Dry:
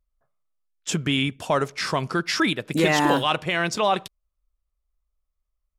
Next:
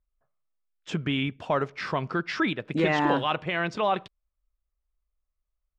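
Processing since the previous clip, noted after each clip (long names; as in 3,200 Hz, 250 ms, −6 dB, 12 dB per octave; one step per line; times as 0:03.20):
low-pass filter 2,900 Hz 12 dB per octave
level −3.5 dB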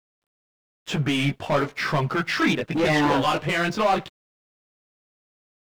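leveller curve on the samples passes 3
multi-voice chorus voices 2, 1 Hz, delay 17 ms, depth 4.2 ms
bit-depth reduction 12 bits, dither none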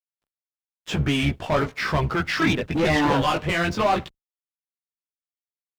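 sub-octave generator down 1 octave, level −5 dB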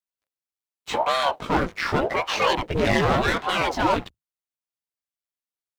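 ring modulator whose carrier an LFO sweeps 480 Hz, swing 90%, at 0.86 Hz
level +2.5 dB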